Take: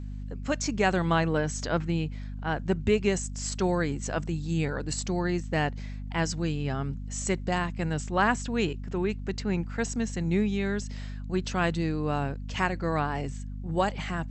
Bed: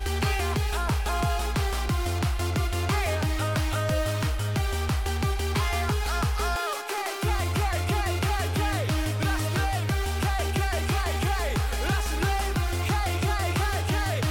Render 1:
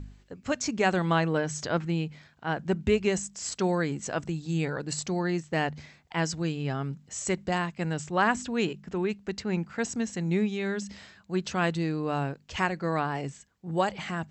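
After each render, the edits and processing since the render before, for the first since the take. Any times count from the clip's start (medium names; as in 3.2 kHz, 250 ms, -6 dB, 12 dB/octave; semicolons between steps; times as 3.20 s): de-hum 50 Hz, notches 5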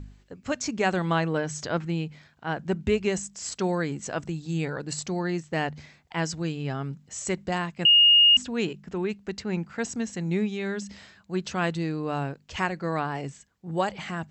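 7.85–8.37 s: bleep 2.85 kHz -13 dBFS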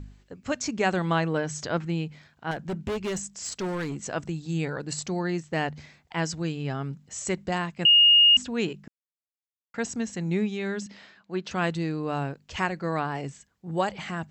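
2.51–4.04 s: hard clipper -26.5 dBFS; 8.88–9.74 s: mute; 10.86–11.51 s: band-pass 210–4600 Hz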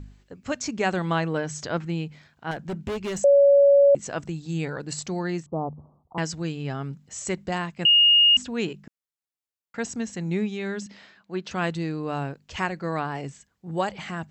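3.24–3.95 s: bleep 563 Hz -12 dBFS; 5.46–6.18 s: steep low-pass 1.2 kHz 96 dB/octave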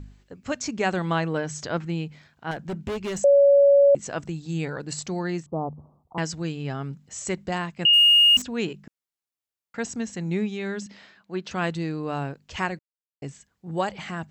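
7.93–8.42 s: jump at every zero crossing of -31 dBFS; 12.79–13.22 s: mute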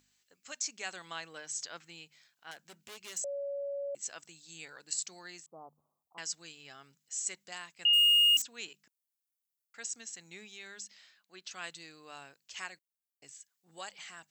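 differentiator; band-stop 930 Hz, Q 26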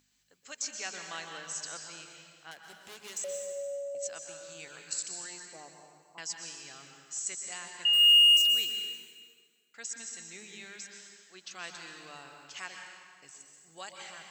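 plate-style reverb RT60 1.9 s, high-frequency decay 0.85×, pre-delay 110 ms, DRR 3 dB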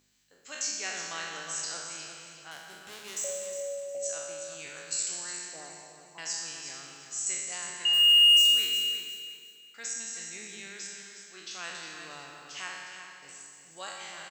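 spectral sustain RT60 1.02 s; feedback delay 360 ms, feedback 27%, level -9.5 dB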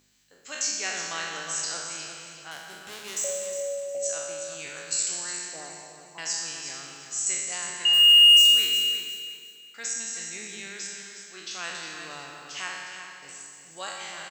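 trim +4.5 dB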